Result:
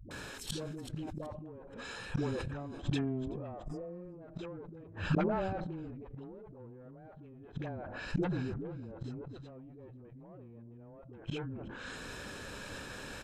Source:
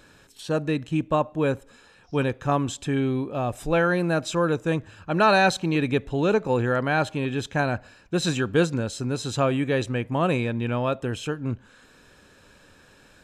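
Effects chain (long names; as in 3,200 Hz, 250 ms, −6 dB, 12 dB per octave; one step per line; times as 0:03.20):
tube saturation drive 23 dB, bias 0.5
treble cut that deepens with the level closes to 710 Hz, closed at −25 dBFS
hum removal 167.3 Hz, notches 2
downward compressor 20 to 1, threshold −32 dBFS, peak gain reduction 9 dB
all-pass dispersion highs, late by 110 ms, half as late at 300 Hz
gate with flip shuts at −32 dBFS, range −27 dB
healed spectral selection 0:03.64–0:04.04, 680–4,700 Hz
on a send: echo with shifted repeats 377 ms, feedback 34%, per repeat −50 Hz, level −24 dB
on the sum: level that may fall only so fast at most 22 dB per second
level +11 dB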